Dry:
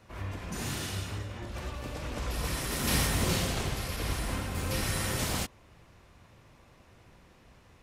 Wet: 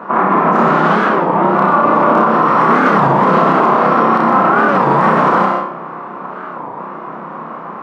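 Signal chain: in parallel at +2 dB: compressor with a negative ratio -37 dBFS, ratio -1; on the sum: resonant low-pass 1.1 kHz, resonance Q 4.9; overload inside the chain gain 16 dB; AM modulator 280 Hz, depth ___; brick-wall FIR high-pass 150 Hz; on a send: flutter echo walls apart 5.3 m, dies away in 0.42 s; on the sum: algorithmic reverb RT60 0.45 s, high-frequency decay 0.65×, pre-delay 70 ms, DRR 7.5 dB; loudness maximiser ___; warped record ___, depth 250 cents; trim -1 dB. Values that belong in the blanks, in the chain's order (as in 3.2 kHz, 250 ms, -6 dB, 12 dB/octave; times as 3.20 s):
60%, +20.5 dB, 33 1/3 rpm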